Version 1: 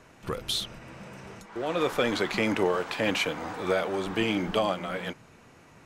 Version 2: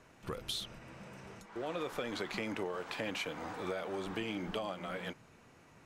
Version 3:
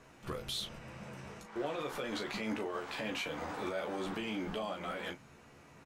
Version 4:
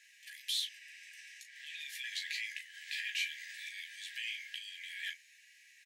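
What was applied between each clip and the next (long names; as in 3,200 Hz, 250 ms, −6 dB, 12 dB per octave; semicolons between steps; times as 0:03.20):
downward compressor 5 to 1, threshold −28 dBFS, peak gain reduction 8 dB; level −6.5 dB
brickwall limiter −30.5 dBFS, peak gain reduction 8 dB; ambience of single reflections 14 ms −4.5 dB, 37 ms −9 dB; level +1 dB
linear-phase brick-wall high-pass 1,600 Hz; level +4 dB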